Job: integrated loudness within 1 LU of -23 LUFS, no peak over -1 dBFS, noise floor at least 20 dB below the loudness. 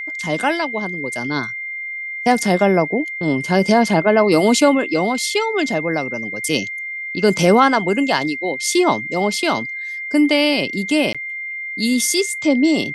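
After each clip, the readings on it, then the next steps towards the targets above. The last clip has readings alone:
dropouts 1; longest dropout 16 ms; steady tone 2100 Hz; tone level -25 dBFS; loudness -18.0 LUFS; peak -1.0 dBFS; loudness target -23.0 LUFS
-> interpolate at 11.13, 16 ms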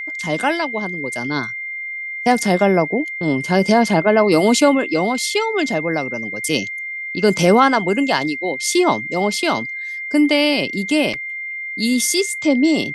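dropouts 0; steady tone 2100 Hz; tone level -25 dBFS
-> notch 2100 Hz, Q 30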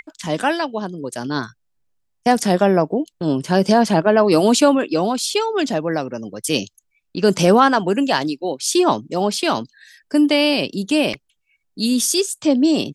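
steady tone none; loudness -18.0 LUFS; peak -1.5 dBFS; loudness target -23.0 LUFS
-> gain -5 dB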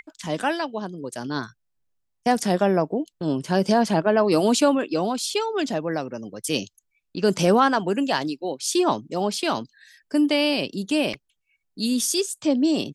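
loudness -23.0 LUFS; peak -6.5 dBFS; noise floor -75 dBFS

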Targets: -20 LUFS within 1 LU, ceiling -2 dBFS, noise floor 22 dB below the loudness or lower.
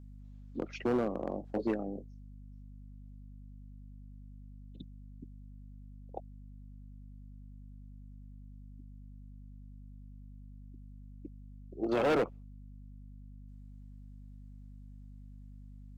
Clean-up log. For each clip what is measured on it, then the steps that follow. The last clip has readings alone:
clipped 0.7%; flat tops at -24.5 dBFS; hum 50 Hz; harmonics up to 250 Hz; hum level -47 dBFS; loudness -35.0 LUFS; peak -24.5 dBFS; loudness target -20.0 LUFS
-> clip repair -24.5 dBFS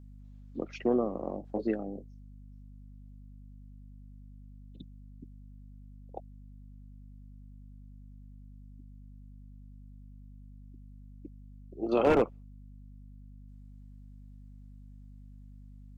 clipped 0.0%; hum 50 Hz; harmonics up to 250 Hz; hum level -47 dBFS
-> notches 50/100/150/200/250 Hz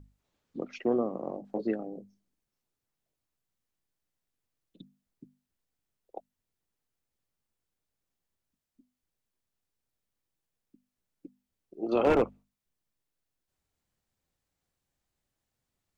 hum none; loudness -30.5 LUFS; peak -14.5 dBFS; loudness target -20.0 LUFS
-> gain +10.5 dB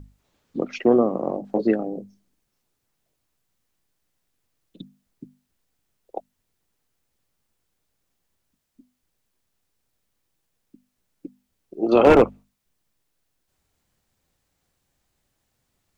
loudness -20.0 LUFS; peak -4.0 dBFS; noise floor -76 dBFS

